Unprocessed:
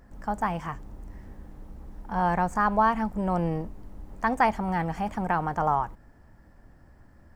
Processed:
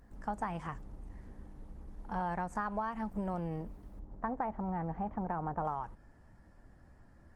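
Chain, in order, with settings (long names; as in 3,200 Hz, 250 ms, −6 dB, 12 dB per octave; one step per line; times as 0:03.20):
0:02.48–0:03.34: hum removal 45.31 Hz, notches 4
0:03.99–0:05.65: low-pass filter 1,100 Hz 12 dB per octave
downward compressor 20 to 1, threshold −26 dBFS, peak gain reduction 10.5 dB
level −5 dB
Opus 20 kbit/s 48,000 Hz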